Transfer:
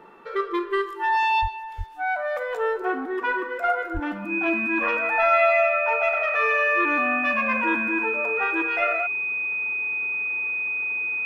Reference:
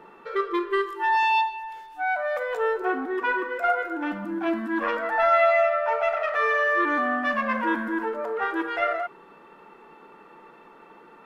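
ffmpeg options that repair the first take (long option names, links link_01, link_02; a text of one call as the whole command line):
ffmpeg -i in.wav -filter_complex "[0:a]bandreject=frequency=2500:width=30,asplit=3[link_01][link_02][link_03];[link_01]afade=type=out:start_time=1.41:duration=0.02[link_04];[link_02]highpass=frequency=140:width=0.5412,highpass=frequency=140:width=1.3066,afade=type=in:start_time=1.41:duration=0.02,afade=type=out:start_time=1.53:duration=0.02[link_05];[link_03]afade=type=in:start_time=1.53:duration=0.02[link_06];[link_04][link_05][link_06]amix=inputs=3:normalize=0,asplit=3[link_07][link_08][link_09];[link_07]afade=type=out:start_time=1.77:duration=0.02[link_10];[link_08]highpass=frequency=140:width=0.5412,highpass=frequency=140:width=1.3066,afade=type=in:start_time=1.77:duration=0.02,afade=type=out:start_time=1.89:duration=0.02[link_11];[link_09]afade=type=in:start_time=1.89:duration=0.02[link_12];[link_10][link_11][link_12]amix=inputs=3:normalize=0,asplit=3[link_13][link_14][link_15];[link_13]afade=type=out:start_time=3.93:duration=0.02[link_16];[link_14]highpass=frequency=140:width=0.5412,highpass=frequency=140:width=1.3066,afade=type=in:start_time=3.93:duration=0.02,afade=type=out:start_time=4.05:duration=0.02[link_17];[link_15]afade=type=in:start_time=4.05:duration=0.02[link_18];[link_16][link_17][link_18]amix=inputs=3:normalize=0" out.wav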